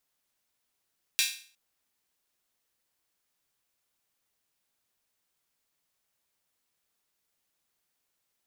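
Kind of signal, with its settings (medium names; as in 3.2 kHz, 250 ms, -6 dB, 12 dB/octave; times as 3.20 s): open hi-hat length 0.36 s, high-pass 2.7 kHz, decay 0.44 s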